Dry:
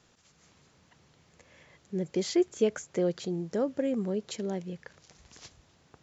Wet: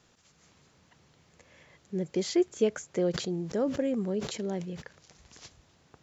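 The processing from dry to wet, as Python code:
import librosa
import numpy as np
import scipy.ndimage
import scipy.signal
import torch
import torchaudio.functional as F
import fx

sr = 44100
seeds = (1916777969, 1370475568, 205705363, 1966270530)

y = fx.sustainer(x, sr, db_per_s=82.0, at=(3.13, 4.81), fade=0.02)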